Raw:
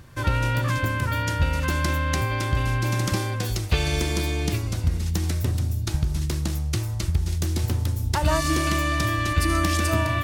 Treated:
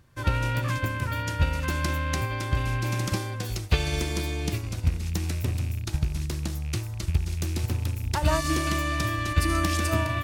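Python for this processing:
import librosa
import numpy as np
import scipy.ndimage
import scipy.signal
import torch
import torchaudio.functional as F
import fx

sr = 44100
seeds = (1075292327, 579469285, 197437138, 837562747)

y = fx.rattle_buzz(x, sr, strikes_db=-23.0, level_db=-30.0)
y = fx.upward_expand(y, sr, threshold_db=-39.0, expansion=1.5)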